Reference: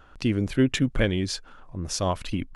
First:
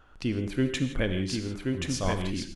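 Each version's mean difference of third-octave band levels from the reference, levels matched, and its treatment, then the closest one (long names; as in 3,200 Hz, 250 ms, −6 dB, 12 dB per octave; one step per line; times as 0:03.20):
7.0 dB: single-tap delay 1,079 ms −3.5 dB
reverb whose tail is shaped and stops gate 190 ms flat, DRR 7.5 dB
level −5 dB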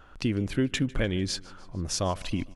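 3.5 dB: downward compressor 2.5 to 1, threshold −24 dBFS, peak gain reduction 6 dB
repeating echo 150 ms, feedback 59%, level −22.5 dB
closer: second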